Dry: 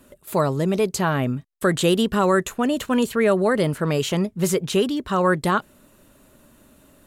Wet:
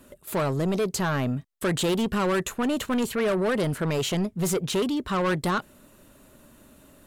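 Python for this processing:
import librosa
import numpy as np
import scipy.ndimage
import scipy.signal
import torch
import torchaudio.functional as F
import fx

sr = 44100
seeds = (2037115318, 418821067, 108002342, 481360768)

y = 10.0 ** (-20.5 / 20.0) * np.tanh(x / 10.0 ** (-20.5 / 20.0))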